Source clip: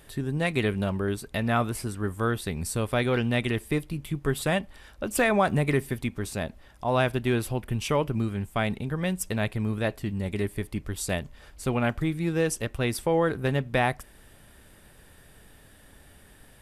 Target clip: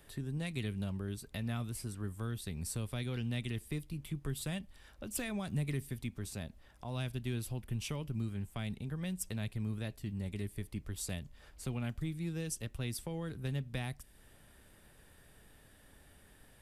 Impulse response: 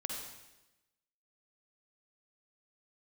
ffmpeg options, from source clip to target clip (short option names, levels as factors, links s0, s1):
-filter_complex "[0:a]acrossover=split=230|3000[s0][s1][s2];[s1]acompressor=threshold=0.00794:ratio=3[s3];[s0][s3][s2]amix=inputs=3:normalize=0,volume=0.422"